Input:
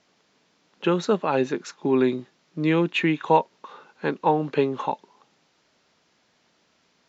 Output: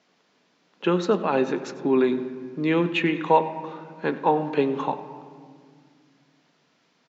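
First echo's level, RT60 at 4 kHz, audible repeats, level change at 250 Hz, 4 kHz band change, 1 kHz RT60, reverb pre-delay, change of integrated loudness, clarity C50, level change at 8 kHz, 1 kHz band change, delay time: -17.5 dB, 1.4 s, 1, 0.0 dB, -1.0 dB, 1.8 s, 3 ms, 0.0 dB, 11.5 dB, n/a, +0.5 dB, 96 ms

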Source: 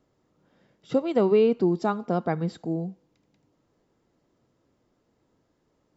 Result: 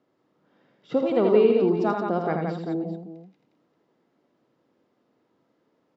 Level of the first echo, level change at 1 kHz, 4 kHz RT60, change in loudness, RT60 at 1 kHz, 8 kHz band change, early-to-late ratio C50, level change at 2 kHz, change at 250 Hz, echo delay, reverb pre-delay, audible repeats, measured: -13.0 dB, +2.0 dB, none, +1.5 dB, none, n/a, none, +2.5 dB, +1.0 dB, 52 ms, none, 4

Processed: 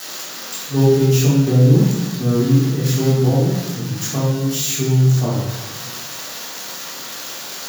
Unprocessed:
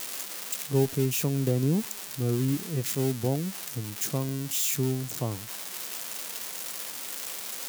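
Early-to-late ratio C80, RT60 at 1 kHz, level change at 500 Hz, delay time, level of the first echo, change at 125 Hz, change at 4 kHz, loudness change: 4.0 dB, 1.0 s, +11.0 dB, none, none, +14.5 dB, +10.0 dB, +11.5 dB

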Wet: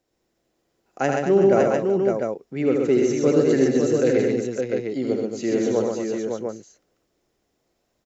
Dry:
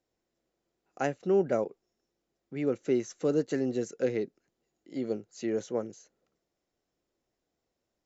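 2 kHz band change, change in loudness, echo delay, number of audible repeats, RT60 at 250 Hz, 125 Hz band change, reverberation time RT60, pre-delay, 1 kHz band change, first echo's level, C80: +11.0 dB, +10.0 dB, 78 ms, 6, none, +11.0 dB, none, none, +11.5 dB, -4.5 dB, none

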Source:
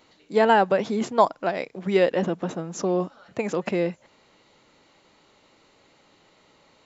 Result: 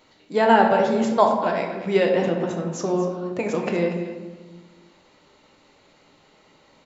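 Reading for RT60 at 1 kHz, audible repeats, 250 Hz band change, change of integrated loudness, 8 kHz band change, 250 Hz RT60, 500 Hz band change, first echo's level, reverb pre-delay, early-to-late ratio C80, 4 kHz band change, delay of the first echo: 1.1 s, 1, +3.5 dB, +2.5 dB, n/a, 1.8 s, +2.5 dB, -12.5 dB, 3 ms, 6.0 dB, +1.5 dB, 0.238 s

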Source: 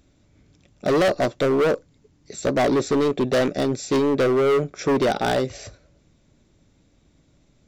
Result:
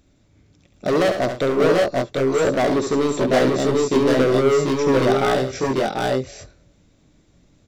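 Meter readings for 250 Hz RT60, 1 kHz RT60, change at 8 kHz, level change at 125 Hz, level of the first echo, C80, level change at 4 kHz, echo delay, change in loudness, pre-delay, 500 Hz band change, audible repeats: none, none, +3.0 dB, +4.0 dB, -8.0 dB, none, +3.0 dB, 69 ms, +2.5 dB, none, +3.0 dB, 3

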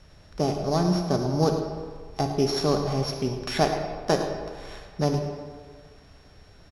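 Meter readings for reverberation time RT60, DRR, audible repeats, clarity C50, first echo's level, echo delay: 1.7 s, 4.0 dB, 1, 5.0 dB, -13.0 dB, 0.109 s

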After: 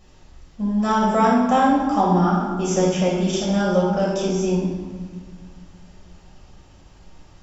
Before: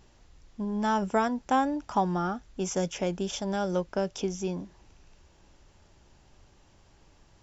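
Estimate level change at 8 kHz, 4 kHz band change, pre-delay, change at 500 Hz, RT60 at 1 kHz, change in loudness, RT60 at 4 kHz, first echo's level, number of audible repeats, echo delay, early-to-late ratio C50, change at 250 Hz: n/a, +8.0 dB, 5 ms, +9.5 dB, 1.5 s, +10.0 dB, 1.0 s, none, none, none, 0.0 dB, +11.0 dB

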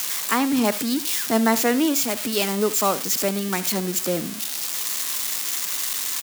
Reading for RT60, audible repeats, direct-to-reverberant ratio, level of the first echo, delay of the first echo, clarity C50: none, 1, none, -16.0 dB, 71 ms, none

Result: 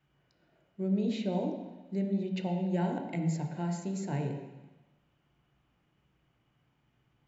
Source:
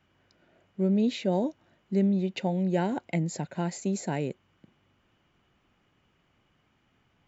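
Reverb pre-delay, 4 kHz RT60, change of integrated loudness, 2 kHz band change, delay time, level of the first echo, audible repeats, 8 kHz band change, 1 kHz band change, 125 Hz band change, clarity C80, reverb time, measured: 3 ms, 1.1 s, -4.5 dB, -6.5 dB, none, none, none, n/a, -4.5 dB, -2.5 dB, 7.0 dB, 1.1 s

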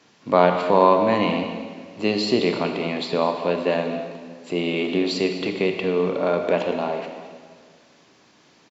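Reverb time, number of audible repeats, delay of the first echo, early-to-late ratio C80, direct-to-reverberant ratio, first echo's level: 1.8 s, 1, 0.206 s, 6.5 dB, 4.5 dB, -15.0 dB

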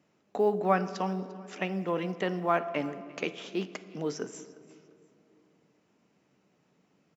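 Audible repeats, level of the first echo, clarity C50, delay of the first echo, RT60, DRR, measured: 2, -21.0 dB, 13.5 dB, 0.347 s, 2.6 s, 11.5 dB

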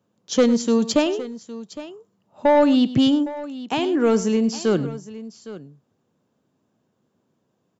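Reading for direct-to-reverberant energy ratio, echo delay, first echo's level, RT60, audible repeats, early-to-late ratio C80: none, 0.102 s, -15.5 dB, none, 2, none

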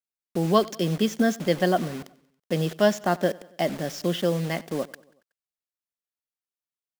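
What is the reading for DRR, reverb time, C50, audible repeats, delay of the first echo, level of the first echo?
none, none, none, 3, 93 ms, -22.5 dB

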